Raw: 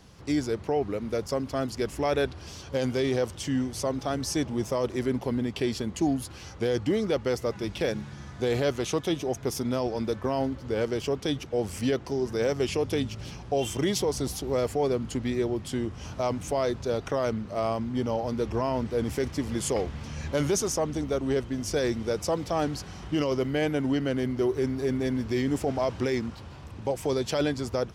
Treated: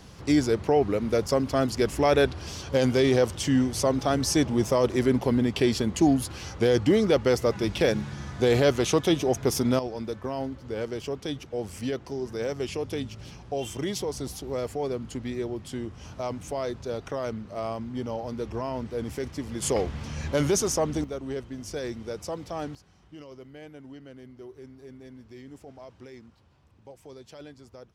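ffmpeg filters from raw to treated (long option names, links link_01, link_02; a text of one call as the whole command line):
ffmpeg -i in.wav -af "asetnsamples=nb_out_samples=441:pad=0,asendcmd='9.79 volume volume -4dB;19.62 volume volume 2dB;21.04 volume volume -6.5dB;22.75 volume volume -18.5dB',volume=5dB" out.wav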